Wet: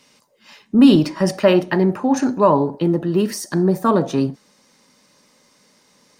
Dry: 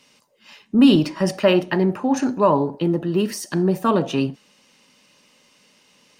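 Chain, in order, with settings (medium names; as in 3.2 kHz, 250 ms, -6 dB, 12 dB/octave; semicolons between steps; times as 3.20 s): peaking EQ 2.8 kHz -5 dB 0.41 oct, from 3.42 s -14 dB; trim +2.5 dB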